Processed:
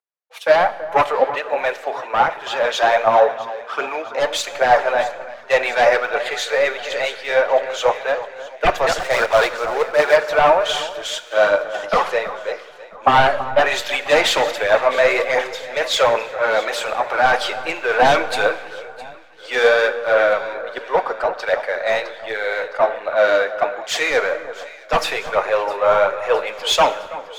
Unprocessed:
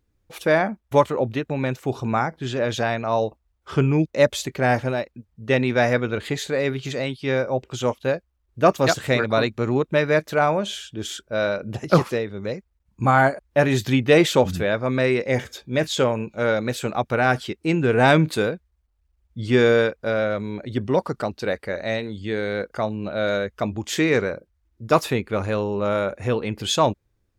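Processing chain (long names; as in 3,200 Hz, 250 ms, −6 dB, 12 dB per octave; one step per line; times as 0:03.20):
0:08.99–0:10.16: gap after every zero crossing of 0.12 ms
high-pass filter 580 Hz 24 dB per octave
in parallel at +1 dB: brickwall limiter −14 dBFS, peak gain reduction 8.5 dB
0:16.14–0:17.51: on the sum: transient designer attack −6 dB, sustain +5 dB
sine wavefolder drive 9 dB, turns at −1.5 dBFS
mid-hump overdrive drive 7 dB, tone 1,400 Hz, clips at −0.5 dBFS
phase shifter 1.3 Hz, delay 4.7 ms, feedback 46%
on a send: delay that swaps between a low-pass and a high-pass 331 ms, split 1,700 Hz, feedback 76%, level −9.5 dB
on the sum: four-comb reverb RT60 2.2 s, combs from 26 ms, DRR 13 dB
multiband upward and downward expander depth 70%
level −7.5 dB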